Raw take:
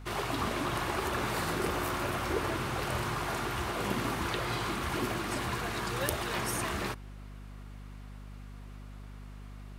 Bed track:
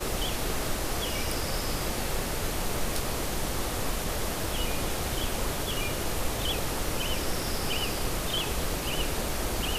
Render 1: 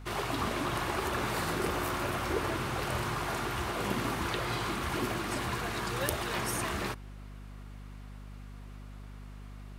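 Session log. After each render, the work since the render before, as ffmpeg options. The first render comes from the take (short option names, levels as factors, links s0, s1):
-af anull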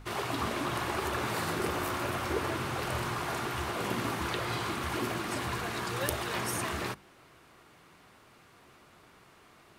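-af "bandreject=f=50:t=h:w=6,bandreject=f=100:t=h:w=6,bandreject=f=150:t=h:w=6,bandreject=f=200:t=h:w=6,bandreject=f=250:t=h:w=6"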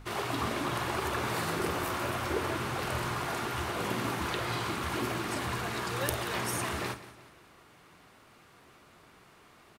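-filter_complex "[0:a]asplit=2[s0][s1];[s1]adelay=49,volume=0.224[s2];[s0][s2]amix=inputs=2:normalize=0,aecho=1:1:181|362|543|724:0.158|0.0666|0.028|0.0117"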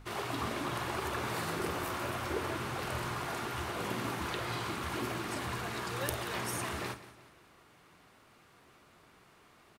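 -af "volume=0.668"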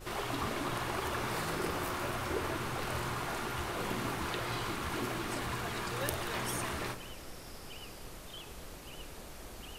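-filter_complex "[1:a]volume=0.133[s0];[0:a][s0]amix=inputs=2:normalize=0"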